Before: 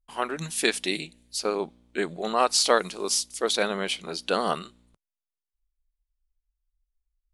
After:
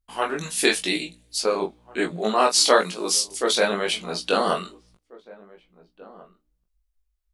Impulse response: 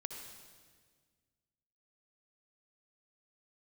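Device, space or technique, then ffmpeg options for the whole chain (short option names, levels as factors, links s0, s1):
double-tracked vocal: -filter_complex "[0:a]asplit=2[s0][s1];[s1]adelay=23,volume=0.398[s2];[s0][s2]amix=inputs=2:normalize=0,flanger=delay=16.5:depth=4.7:speed=0.98,asettb=1/sr,asplit=3[s3][s4][s5];[s3]atrim=end=2.114[s6];[s4]atrim=start=2.11:end=3.28,asetpts=PTS-STARTPTS,afade=t=in:d=0.004:c=qsin,afade=t=out:st=1.166:d=0.004:c=qsin,highpass=f=130:w=0.5412,highpass=f=130:w=1.3066[s7];[s5]atrim=start=3.276[s8];[s6][s7]acrossfade=d=0.004:c1=hsin:c2=qsin[s9];[s9][s8]acrossfade=d=0.004:c1=qsin:c2=hsin,asplit=2[s10][s11];[s11]adelay=1691,volume=0.0891,highshelf=f=4000:g=-38[s12];[s10][s12]amix=inputs=2:normalize=0,volume=2.11"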